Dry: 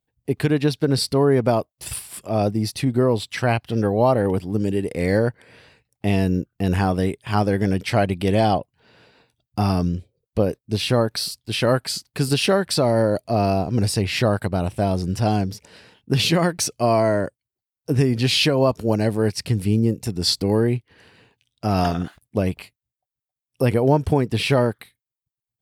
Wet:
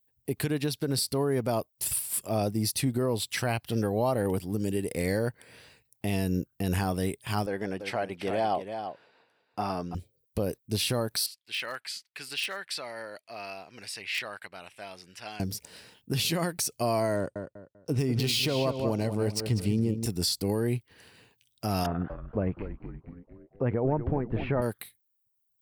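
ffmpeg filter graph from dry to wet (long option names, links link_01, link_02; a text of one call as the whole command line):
ffmpeg -i in.wav -filter_complex "[0:a]asettb=1/sr,asplit=3[link_01][link_02][link_03];[link_01]atrim=end=7.464[link_04];[link_02]atrim=start=7.46:end=9.95,asetpts=PTS-STARTPTS,afade=type=in:duration=0.004:curve=qsin,afade=type=out:start_time=2.486:duration=0.004:curve=qsin,bandpass=frequency=920:width_type=q:width=0.64,aecho=1:1:336:0.316,atrim=end_sample=109809[link_05];[link_03]atrim=start=9.946[link_06];[link_04][link_05]acrossfade=duration=0.004:curve1=hsin:curve2=qsin[link_07];[link_07][link_06]acrossfade=duration=0.004:curve1=qsin:curve2=hsin,asettb=1/sr,asplit=3[link_08][link_09][link_10];[link_08]atrim=end=11.264[link_11];[link_09]atrim=start=11.26:end=15.4,asetpts=PTS-STARTPTS,afade=type=in:duration=0.004:curve=qsin,afade=type=out:start_time=4.136:duration=0.004:curve=qsin,bandpass=frequency=2200:width_type=q:width=1.8,asoftclip=type=hard:threshold=-20.5dB[link_12];[link_10]atrim=start=15.396[link_13];[link_11][link_12]acrossfade=duration=0.004:curve1=hsin:curve2=qsin[link_14];[link_14][link_13]acrossfade=duration=0.004:curve1=qsin:curve2=hsin,asettb=1/sr,asplit=3[link_15][link_16][link_17];[link_15]atrim=end=17.164[link_18];[link_16]atrim=start=17.16:end=20.06,asetpts=PTS-STARTPTS,afade=type=in:duration=0.004:curve=qsin,afade=type=out:start_time=2.896:duration=0.004:curve=qsin,bandreject=frequency=1700:width=6.8,adynamicsmooth=sensitivity=4.5:basefreq=5300,asplit=2[link_19][link_20];[link_20]adelay=196,lowpass=frequency=2700:poles=1,volume=-8dB,asplit=2[link_21][link_22];[link_22]adelay=196,lowpass=frequency=2700:poles=1,volume=0.3,asplit=2[link_23][link_24];[link_24]adelay=196,lowpass=frequency=2700:poles=1,volume=0.3,asplit=2[link_25][link_26];[link_26]adelay=196,lowpass=frequency=2700:poles=1,volume=0.3[link_27];[link_19][link_21][link_23][link_25][link_27]amix=inputs=5:normalize=0,atrim=end_sample=127890[link_28];[link_17]atrim=start=20.056[link_29];[link_18][link_28]acrossfade=duration=0.004:curve1=hsin:curve2=qsin[link_30];[link_30][link_29]acrossfade=duration=0.004:curve1=qsin:curve2=hsin,asettb=1/sr,asplit=3[link_31][link_32][link_33];[link_31]atrim=end=21.864[link_34];[link_32]atrim=start=21.86:end=24.62,asetpts=PTS-STARTPTS,afade=type=in:duration=0.004:curve=qsin,afade=type=out:start_time=2.756:duration=0.004:curve=qsin,lowpass=frequency=1800:width=0.5412,lowpass=frequency=1800:width=1.3066,asplit=8[link_35][link_36][link_37][link_38][link_39][link_40][link_41][link_42];[link_36]adelay=235,afreqshift=-120,volume=-10.5dB[link_43];[link_37]adelay=470,afreqshift=-240,volume=-15.4dB[link_44];[link_38]adelay=705,afreqshift=-360,volume=-20.3dB[link_45];[link_39]adelay=940,afreqshift=-480,volume=-25.1dB[link_46];[link_40]adelay=1175,afreqshift=-600,volume=-30dB[link_47];[link_41]adelay=1410,afreqshift=-720,volume=-34.9dB[link_48];[link_42]adelay=1645,afreqshift=-840,volume=-39.8dB[link_49];[link_35][link_43][link_44][link_45][link_46][link_47][link_48][link_49]amix=inputs=8:normalize=0,atrim=end_sample=121716[link_50];[link_33]atrim=start=24.616[link_51];[link_34][link_50]acrossfade=duration=0.004:curve1=hsin:curve2=qsin[link_52];[link_52][link_51]acrossfade=duration=0.004:curve1=qsin:curve2=hsin,aemphasis=mode=production:type=50fm,alimiter=limit=-13dB:level=0:latency=1:release=162,volume=-5dB" out.wav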